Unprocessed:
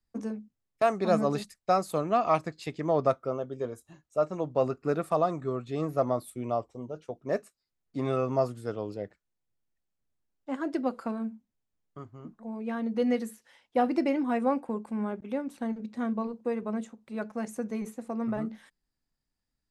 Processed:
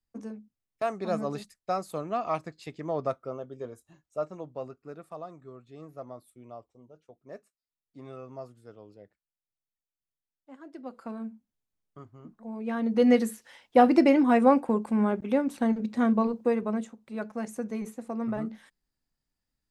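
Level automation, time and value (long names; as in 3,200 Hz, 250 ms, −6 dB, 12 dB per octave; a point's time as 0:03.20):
0:04.20 −5 dB
0:04.84 −15 dB
0:10.71 −15 dB
0:11.16 −3.5 dB
0:12.25 −3.5 dB
0:13.15 +7 dB
0:16.35 +7 dB
0:16.98 0 dB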